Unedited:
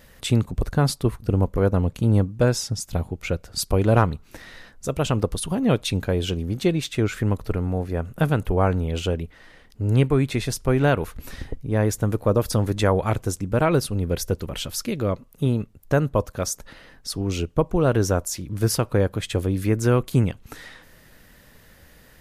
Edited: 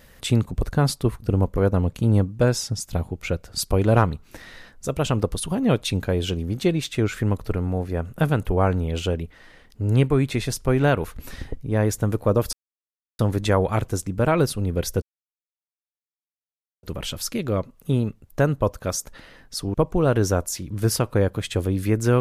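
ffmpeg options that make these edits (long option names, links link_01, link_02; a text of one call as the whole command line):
ffmpeg -i in.wav -filter_complex "[0:a]asplit=4[link_01][link_02][link_03][link_04];[link_01]atrim=end=12.53,asetpts=PTS-STARTPTS,afade=type=out:start_time=12.526:duration=0.004:curve=hsin,apad=pad_dur=0.66[link_05];[link_02]atrim=start=12.53:end=14.36,asetpts=PTS-STARTPTS,afade=type=in:duration=0.004:curve=hsin,afade=type=out:start_time=1.826:duration=0.004:curve=hsin,apad=pad_dur=1.81[link_06];[link_03]atrim=start=14.36:end=17.272,asetpts=PTS-STARTPTS,afade=type=in:duration=0.004:curve=hsin[link_07];[link_04]atrim=start=17.528[link_08];[link_05][link_06][link_07]concat=n=3:v=0:a=1[link_09];[link_09][link_08]acrossfade=duration=0.004:curve1=hsin:curve2=hsin" out.wav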